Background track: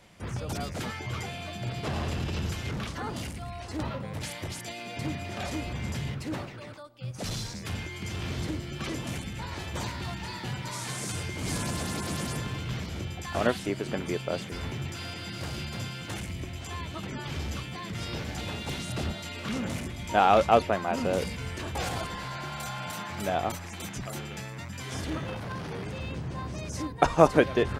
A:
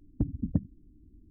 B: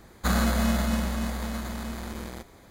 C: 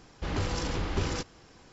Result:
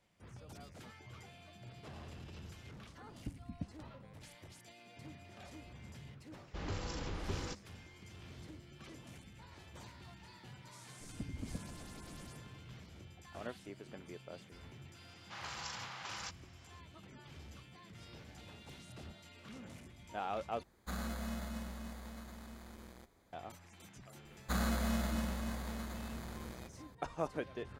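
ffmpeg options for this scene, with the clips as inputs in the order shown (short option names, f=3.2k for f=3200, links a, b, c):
-filter_complex "[1:a]asplit=2[a][b];[3:a]asplit=2[c][d];[2:a]asplit=2[e][f];[0:a]volume=-19dB[g];[b]acompressor=threshold=-38dB:ratio=6:attack=3.2:release=140:knee=1:detection=peak[h];[d]highpass=f=780:w=0.5412,highpass=f=780:w=1.3066[i];[g]asplit=2[j][k];[j]atrim=end=20.634[l];[e]atrim=end=2.7,asetpts=PTS-STARTPTS,volume=-17dB[m];[k]atrim=start=23.326[n];[a]atrim=end=1.3,asetpts=PTS-STARTPTS,volume=-15.5dB,afade=t=in:d=0.004:c=hsin,afade=t=out:st=1.296:d=0.004:c=hsin,adelay=3060[o];[c]atrim=end=1.72,asetpts=PTS-STARTPTS,volume=-10dB,afade=t=in:d=0.004:c=hsin,afade=t=out:st=1.716:d=0.004:c=hsin,adelay=6320[p];[h]atrim=end=1.3,asetpts=PTS-STARTPTS,volume=-1dB,afade=t=in:d=0.004:c=hsin,afade=t=out:st=1.296:d=0.004:c=hsin,adelay=11000[q];[i]atrim=end=1.72,asetpts=PTS-STARTPTS,volume=-7dB,afade=t=in:d=0.004:c=hsin,afade=t=out:st=1.716:d=0.004:c=hsin,adelay=665028S[r];[f]atrim=end=2.7,asetpts=PTS-STARTPTS,volume=-10.5dB,afade=t=in:d=0.004:c=hsin,afade=t=out:st=2.696:d=0.004:c=hsin,adelay=24250[s];[l][m]acrossfade=d=0.004:c1=hsin:c2=hsin[t];[t][n]acrossfade=d=0.004:c1=hsin:c2=hsin[u];[u][o][p][q][r][s]amix=inputs=6:normalize=0"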